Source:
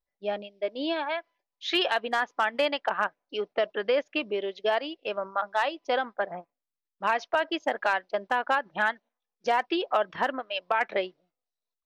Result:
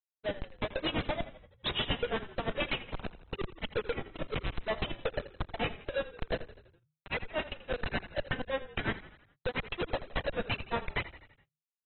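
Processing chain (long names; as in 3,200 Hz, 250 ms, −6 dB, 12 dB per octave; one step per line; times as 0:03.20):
sub-octave generator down 1 octave, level −6 dB
flat-topped bell 1,100 Hz −10.5 dB
in parallel at +2 dB: downward compressor 16 to 1, threshold −35 dBFS, peak gain reduction 15 dB
on the sum: notch comb filter 200 Hz
pitch vibrato 1.7 Hz 87 cents
bit reduction 12 bits
auto-filter high-pass square 2.3 Hz 530–2,100 Hz
comparator with hysteresis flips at −30 dBFS
granular cloud 111 ms, grains 8.6 per second, spray 12 ms, pitch spread up and down by 0 semitones
on a send: echo with shifted repeats 83 ms, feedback 55%, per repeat −31 Hz, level −15 dB
on the sum: AAC 16 kbit/s 24,000 Hz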